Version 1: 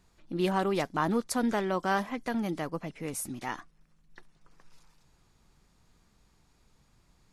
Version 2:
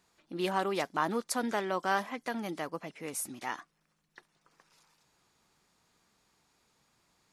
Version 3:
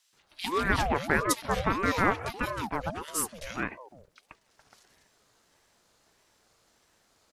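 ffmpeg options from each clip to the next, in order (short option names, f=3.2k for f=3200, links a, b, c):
-af "highpass=f=440:p=1"
-filter_complex "[0:a]acrossover=split=220|2100[a][b][c];[b]adelay=130[d];[a]adelay=490[e];[e][d][c]amix=inputs=3:normalize=0,aeval=exprs='val(0)*sin(2*PI*550*n/s+550*0.5/1.6*sin(2*PI*1.6*n/s))':c=same,volume=8.5dB"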